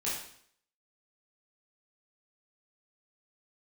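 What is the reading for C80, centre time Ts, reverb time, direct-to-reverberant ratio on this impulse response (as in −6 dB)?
6.0 dB, 52 ms, 0.60 s, −8.5 dB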